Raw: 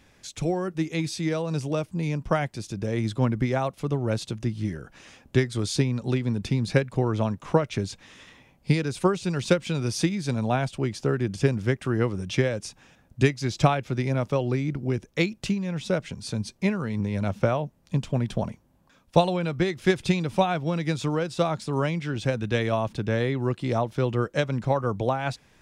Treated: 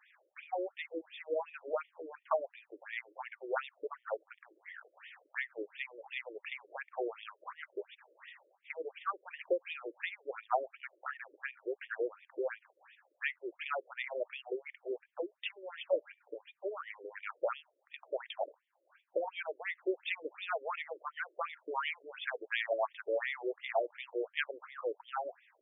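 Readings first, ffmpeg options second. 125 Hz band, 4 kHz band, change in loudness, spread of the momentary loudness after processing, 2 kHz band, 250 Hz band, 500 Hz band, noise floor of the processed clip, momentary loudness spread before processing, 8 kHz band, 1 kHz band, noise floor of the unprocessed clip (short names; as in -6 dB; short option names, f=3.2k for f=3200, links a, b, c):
under -40 dB, -12.0 dB, -13.0 dB, 13 LU, -6.5 dB, -23.5 dB, -11.0 dB, -79 dBFS, 6 LU, under -40 dB, -9.5 dB, -60 dBFS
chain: -filter_complex "[0:a]alimiter=limit=-13dB:level=0:latency=1:release=224,acrossover=split=520 5300:gain=0.224 1 0.126[a][b][c];[a][b][c]amix=inputs=3:normalize=0,afftfilt=real='re*between(b*sr/1024,420*pow(2600/420,0.5+0.5*sin(2*PI*2.8*pts/sr))/1.41,420*pow(2600/420,0.5+0.5*sin(2*PI*2.8*pts/sr))*1.41)':imag='im*between(b*sr/1024,420*pow(2600/420,0.5+0.5*sin(2*PI*2.8*pts/sr))/1.41,420*pow(2600/420,0.5+0.5*sin(2*PI*2.8*pts/sr))*1.41)':win_size=1024:overlap=0.75,volume=1dB"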